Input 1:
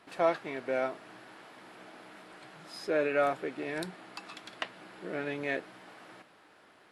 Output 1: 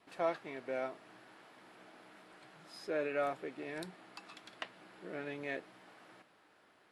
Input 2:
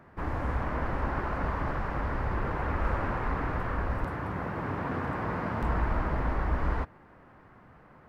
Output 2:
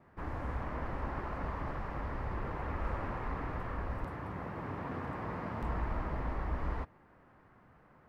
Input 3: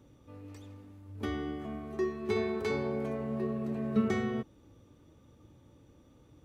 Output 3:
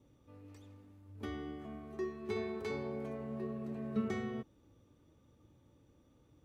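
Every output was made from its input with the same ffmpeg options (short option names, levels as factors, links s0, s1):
-af "adynamicequalizer=threshold=0.00178:dfrequency=1500:dqfactor=7.8:tfrequency=1500:tqfactor=7.8:attack=5:release=100:ratio=0.375:range=2.5:mode=cutabove:tftype=bell,volume=0.447"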